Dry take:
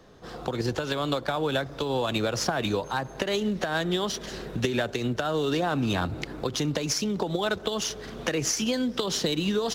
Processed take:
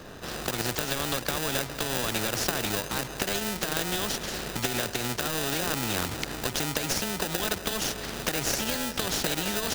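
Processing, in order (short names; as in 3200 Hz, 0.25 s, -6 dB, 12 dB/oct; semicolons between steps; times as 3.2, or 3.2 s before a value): in parallel at +1 dB: sample-rate reducer 1100 Hz, jitter 0%; on the sum: spectral compressor 2:1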